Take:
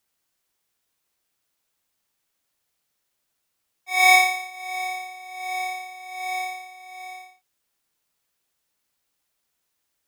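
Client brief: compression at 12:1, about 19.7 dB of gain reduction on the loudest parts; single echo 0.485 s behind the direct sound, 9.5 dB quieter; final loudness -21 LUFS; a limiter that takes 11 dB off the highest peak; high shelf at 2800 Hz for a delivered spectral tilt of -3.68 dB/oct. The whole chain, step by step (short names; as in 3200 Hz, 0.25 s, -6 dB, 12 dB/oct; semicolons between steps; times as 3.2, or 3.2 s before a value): high shelf 2800 Hz -7 dB; compressor 12:1, threshold -33 dBFS; limiter -36.5 dBFS; echo 0.485 s -9.5 dB; gain +22 dB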